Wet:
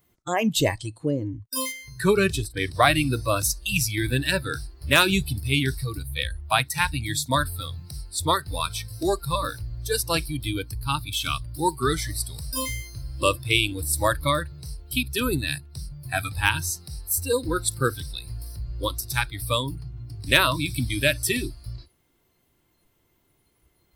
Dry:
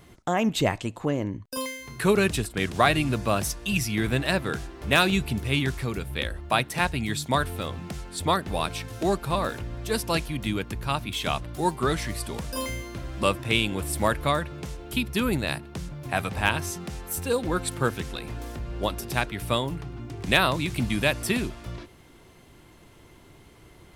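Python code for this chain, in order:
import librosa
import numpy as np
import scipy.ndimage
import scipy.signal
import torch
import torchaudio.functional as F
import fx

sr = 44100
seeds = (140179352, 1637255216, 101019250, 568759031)

y = fx.noise_reduce_blind(x, sr, reduce_db=19)
y = fx.high_shelf(y, sr, hz=5800.0, db=fx.steps((0.0, 8.0), (1.71, -2.5), (2.81, 6.5)))
y = F.gain(torch.from_numpy(y), 2.0).numpy()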